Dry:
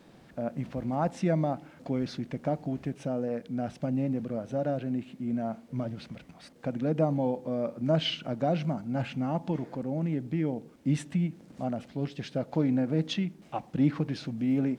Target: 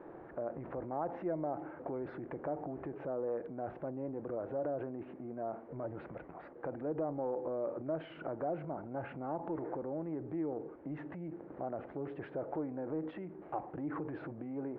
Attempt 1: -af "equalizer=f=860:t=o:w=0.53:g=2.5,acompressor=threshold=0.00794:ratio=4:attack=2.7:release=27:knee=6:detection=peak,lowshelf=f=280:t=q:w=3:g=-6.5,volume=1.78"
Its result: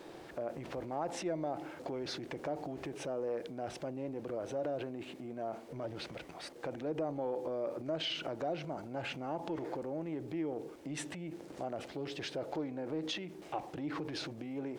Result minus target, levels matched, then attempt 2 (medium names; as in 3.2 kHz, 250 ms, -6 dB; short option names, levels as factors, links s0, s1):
2 kHz band +5.5 dB
-af "equalizer=f=860:t=o:w=0.53:g=2.5,acompressor=threshold=0.00794:ratio=4:attack=2.7:release=27:knee=6:detection=peak,lowpass=f=1600:w=0.5412,lowpass=f=1600:w=1.3066,lowshelf=f=280:t=q:w=3:g=-6.5,volume=1.78"